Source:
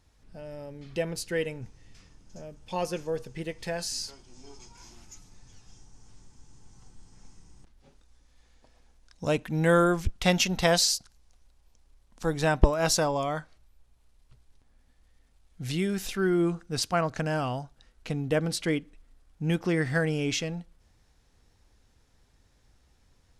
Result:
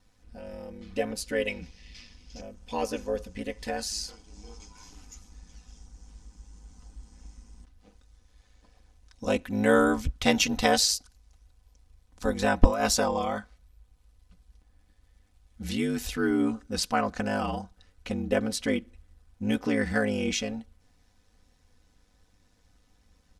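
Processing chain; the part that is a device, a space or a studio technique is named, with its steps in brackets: 1.47–2.41 s: high-order bell 3.3 kHz +12 dB; ring-modulated robot voice (ring modulator 52 Hz; comb 4 ms, depth 68%); trim +1.5 dB

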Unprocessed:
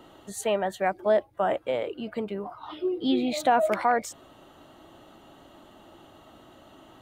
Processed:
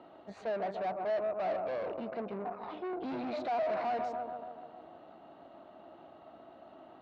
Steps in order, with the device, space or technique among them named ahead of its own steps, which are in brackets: 2.93–3.55 s: high-pass 170 Hz 24 dB/octave; analogue delay pedal into a guitar amplifier (bucket-brigade echo 142 ms, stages 1024, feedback 63%, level -13 dB; valve stage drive 36 dB, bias 0.8; cabinet simulation 110–3700 Hz, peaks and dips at 120 Hz -8 dB, 680 Hz +9 dB, 1.9 kHz -3 dB, 3.2 kHz -10 dB)

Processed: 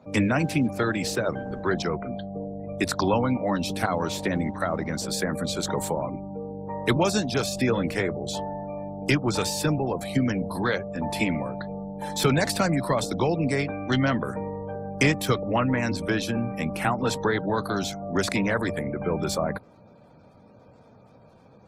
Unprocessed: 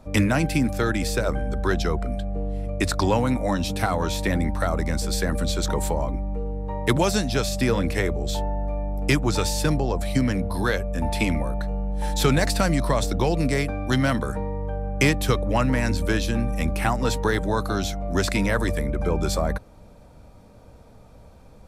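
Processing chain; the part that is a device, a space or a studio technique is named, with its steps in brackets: noise-suppressed video call (high-pass 110 Hz 24 dB/octave; spectral gate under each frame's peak -30 dB strong; trim -1 dB; Opus 16 kbps 48 kHz)

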